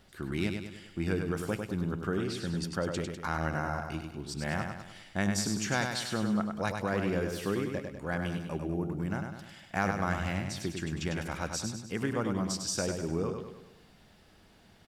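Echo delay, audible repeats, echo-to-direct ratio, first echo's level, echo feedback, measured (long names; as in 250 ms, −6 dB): 100 ms, 5, −4.5 dB, −5.5 dB, 49%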